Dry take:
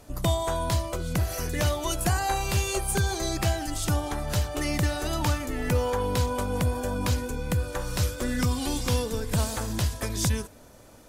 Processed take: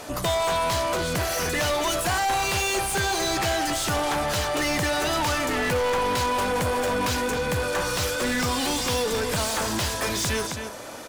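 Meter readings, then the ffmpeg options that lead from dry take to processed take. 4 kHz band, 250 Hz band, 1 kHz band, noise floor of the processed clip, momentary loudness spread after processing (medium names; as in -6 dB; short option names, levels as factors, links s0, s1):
+7.0 dB, +1.0 dB, +7.0 dB, -33 dBFS, 2 LU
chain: -filter_complex "[0:a]asplit=2[s0][s1];[s1]adelay=268.2,volume=0.2,highshelf=f=4000:g=-6.04[s2];[s0][s2]amix=inputs=2:normalize=0,asplit=2[s3][s4];[s4]highpass=f=720:p=1,volume=28.2,asoftclip=type=tanh:threshold=0.224[s5];[s3][s5]amix=inputs=2:normalize=0,lowpass=f=4900:p=1,volume=0.501,volume=0.631"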